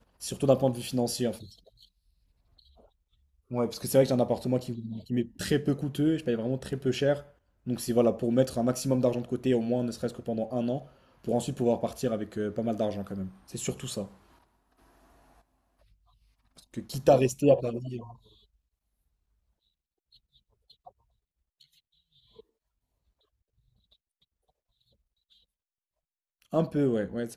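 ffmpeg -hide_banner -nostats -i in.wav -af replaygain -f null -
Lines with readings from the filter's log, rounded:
track_gain = +9.8 dB
track_peak = 0.271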